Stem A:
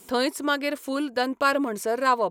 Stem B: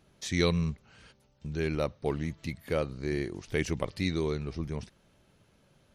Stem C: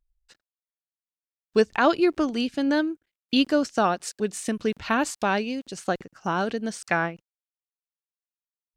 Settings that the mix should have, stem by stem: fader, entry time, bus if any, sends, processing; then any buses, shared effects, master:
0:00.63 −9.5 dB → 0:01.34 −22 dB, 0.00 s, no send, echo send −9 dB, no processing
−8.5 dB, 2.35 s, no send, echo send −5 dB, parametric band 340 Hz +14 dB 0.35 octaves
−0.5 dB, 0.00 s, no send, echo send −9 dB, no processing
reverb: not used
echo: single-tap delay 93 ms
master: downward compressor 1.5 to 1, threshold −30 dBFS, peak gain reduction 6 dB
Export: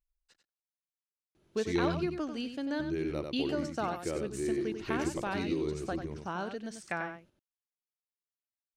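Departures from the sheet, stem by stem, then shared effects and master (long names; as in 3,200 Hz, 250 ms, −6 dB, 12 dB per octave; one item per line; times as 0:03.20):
stem A: muted
stem B: entry 2.35 s → 1.35 s
stem C −0.5 dB → −11.0 dB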